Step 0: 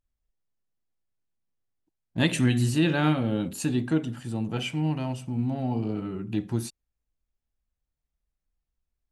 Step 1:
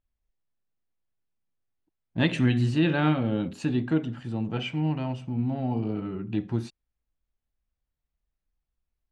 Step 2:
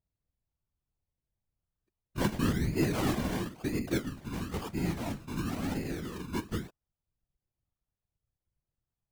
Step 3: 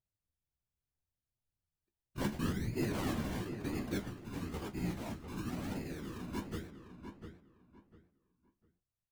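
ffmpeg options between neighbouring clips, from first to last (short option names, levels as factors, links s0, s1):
-af "lowpass=3600"
-af "acrusher=samples=27:mix=1:aa=0.000001:lfo=1:lforange=16.2:lforate=0.99,afftfilt=real='hypot(re,im)*cos(2*PI*random(0))':imag='hypot(re,im)*sin(2*PI*random(1))':win_size=512:overlap=0.75"
-filter_complex "[0:a]flanger=delay=7.7:depth=9.3:regen=52:speed=0.72:shape=triangular,asplit=2[s0][s1];[s1]adelay=700,lowpass=f=2500:p=1,volume=0.398,asplit=2[s2][s3];[s3]adelay=700,lowpass=f=2500:p=1,volume=0.25,asplit=2[s4][s5];[s5]adelay=700,lowpass=f=2500:p=1,volume=0.25[s6];[s0][s2][s4][s6]amix=inputs=4:normalize=0,volume=0.75"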